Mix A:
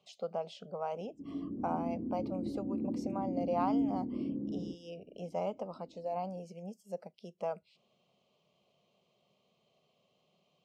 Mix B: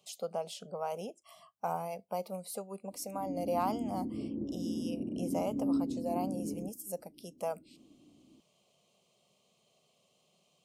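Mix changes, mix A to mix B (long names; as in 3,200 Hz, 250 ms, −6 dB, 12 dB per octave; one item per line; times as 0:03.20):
background: entry +1.95 s
master: remove high-frequency loss of the air 180 metres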